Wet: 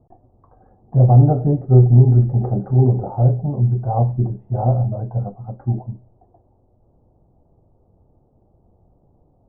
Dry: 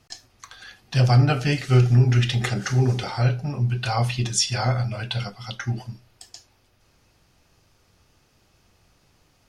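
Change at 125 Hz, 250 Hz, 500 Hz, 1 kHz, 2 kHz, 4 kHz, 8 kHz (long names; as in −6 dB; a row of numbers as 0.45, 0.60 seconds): +6.0 dB, +6.0 dB, +6.0 dB, +2.5 dB, below −30 dB, below −40 dB, below −40 dB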